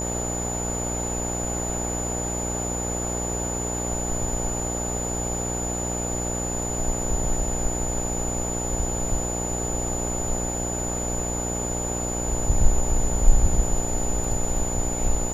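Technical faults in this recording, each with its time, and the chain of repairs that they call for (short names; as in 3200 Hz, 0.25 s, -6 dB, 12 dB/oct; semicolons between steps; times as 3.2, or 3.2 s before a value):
buzz 60 Hz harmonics 15 -30 dBFS
tone 7000 Hz -29 dBFS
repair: de-hum 60 Hz, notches 15; notch 7000 Hz, Q 30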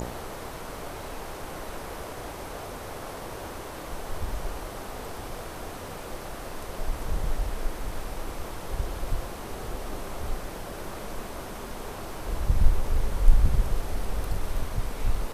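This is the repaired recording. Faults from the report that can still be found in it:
none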